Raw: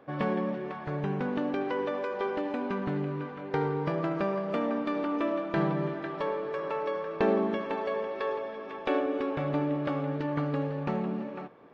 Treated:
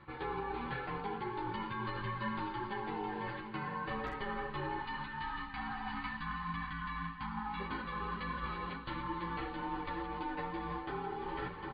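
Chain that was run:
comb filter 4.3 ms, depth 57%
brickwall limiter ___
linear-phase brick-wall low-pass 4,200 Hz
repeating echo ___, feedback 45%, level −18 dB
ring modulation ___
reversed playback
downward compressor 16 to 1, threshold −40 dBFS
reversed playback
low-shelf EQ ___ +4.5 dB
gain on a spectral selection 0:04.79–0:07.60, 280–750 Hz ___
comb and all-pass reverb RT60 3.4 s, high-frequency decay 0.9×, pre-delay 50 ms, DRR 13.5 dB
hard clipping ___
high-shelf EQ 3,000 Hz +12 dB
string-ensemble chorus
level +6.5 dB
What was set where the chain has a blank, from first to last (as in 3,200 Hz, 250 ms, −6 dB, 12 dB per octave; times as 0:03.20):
−15.5 dBFS, 753 ms, 610 Hz, 200 Hz, −26 dB, −30 dBFS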